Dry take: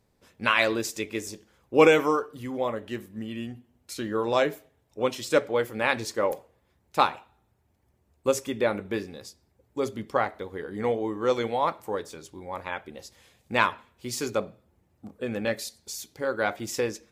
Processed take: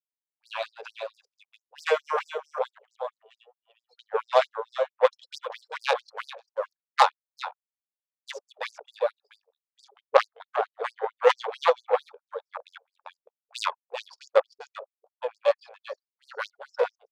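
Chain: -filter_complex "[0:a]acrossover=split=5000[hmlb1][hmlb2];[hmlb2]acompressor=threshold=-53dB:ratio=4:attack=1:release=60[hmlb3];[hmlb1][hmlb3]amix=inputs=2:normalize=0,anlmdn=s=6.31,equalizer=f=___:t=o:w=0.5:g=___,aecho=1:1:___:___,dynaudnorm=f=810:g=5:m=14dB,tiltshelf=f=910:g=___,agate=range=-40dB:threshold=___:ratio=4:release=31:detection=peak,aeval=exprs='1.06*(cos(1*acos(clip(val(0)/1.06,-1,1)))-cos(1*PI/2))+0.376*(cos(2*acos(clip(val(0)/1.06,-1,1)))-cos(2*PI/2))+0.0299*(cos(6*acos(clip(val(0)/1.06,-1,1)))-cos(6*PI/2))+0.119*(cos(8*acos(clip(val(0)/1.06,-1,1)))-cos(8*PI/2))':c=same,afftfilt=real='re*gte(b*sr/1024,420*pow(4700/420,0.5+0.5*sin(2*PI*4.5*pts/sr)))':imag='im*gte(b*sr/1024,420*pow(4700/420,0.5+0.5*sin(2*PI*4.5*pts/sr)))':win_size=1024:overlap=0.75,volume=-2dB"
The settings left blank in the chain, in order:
2k, -15, 394, 0.473, 4.5, -46dB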